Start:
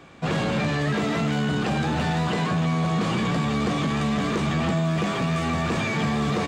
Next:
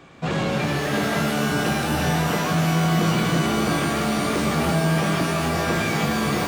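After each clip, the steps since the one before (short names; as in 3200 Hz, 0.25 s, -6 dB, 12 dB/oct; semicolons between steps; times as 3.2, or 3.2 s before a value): shimmer reverb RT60 3 s, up +12 st, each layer -2 dB, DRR 5.5 dB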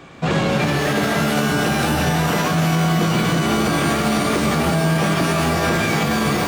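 maximiser +14.5 dB; gain -8.5 dB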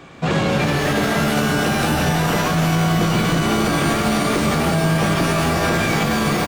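frequency-shifting echo 0.18 s, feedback 62%, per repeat -58 Hz, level -15 dB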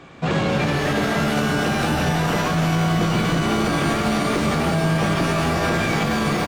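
high shelf 9200 Hz -8.5 dB; gain -2 dB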